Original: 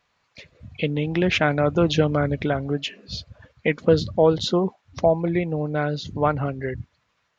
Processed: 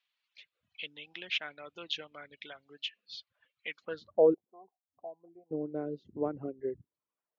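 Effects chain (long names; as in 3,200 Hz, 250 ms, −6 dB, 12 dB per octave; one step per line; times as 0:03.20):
0:04.34–0:05.51: formant resonators in series a
dynamic equaliser 350 Hz, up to +4 dB, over −29 dBFS, Q 0.92
reverb reduction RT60 0.67 s
band-pass filter sweep 3,200 Hz → 360 Hz, 0:03.78–0:04.31
level −6 dB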